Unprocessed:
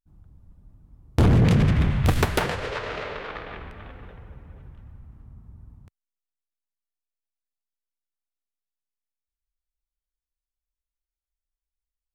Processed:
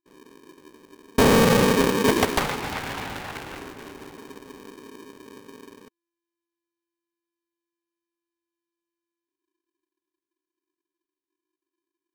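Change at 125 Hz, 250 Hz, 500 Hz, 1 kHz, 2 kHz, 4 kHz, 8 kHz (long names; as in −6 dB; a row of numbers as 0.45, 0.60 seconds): −8.5, +2.5, +8.0, +6.0, +5.0, +7.0, +10.5 decibels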